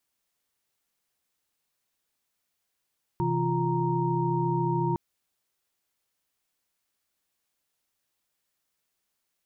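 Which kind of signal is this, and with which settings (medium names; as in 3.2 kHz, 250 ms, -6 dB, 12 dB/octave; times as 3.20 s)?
chord C3/E3/F4/A#5 sine, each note -29 dBFS 1.76 s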